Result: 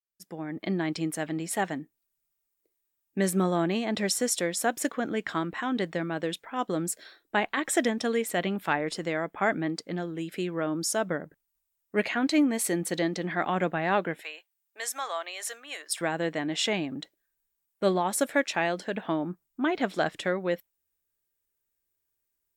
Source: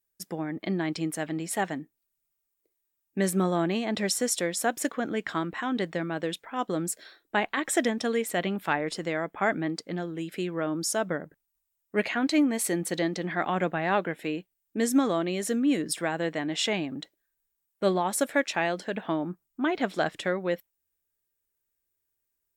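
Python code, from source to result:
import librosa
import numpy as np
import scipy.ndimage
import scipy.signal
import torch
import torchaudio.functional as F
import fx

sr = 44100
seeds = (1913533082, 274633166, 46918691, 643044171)

y = fx.fade_in_head(x, sr, length_s=0.64)
y = fx.highpass(y, sr, hz=730.0, slope=24, at=(14.21, 16.01))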